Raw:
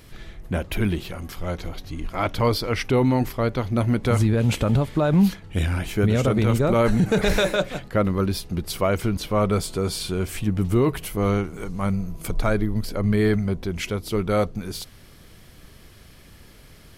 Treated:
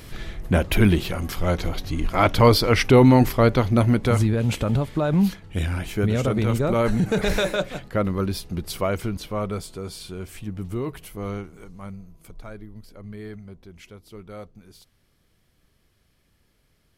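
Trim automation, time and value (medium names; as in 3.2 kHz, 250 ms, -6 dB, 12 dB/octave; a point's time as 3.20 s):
3.53 s +6 dB
4.39 s -2 dB
8.81 s -2 dB
9.79 s -9 dB
11.39 s -9 dB
12.34 s -17.5 dB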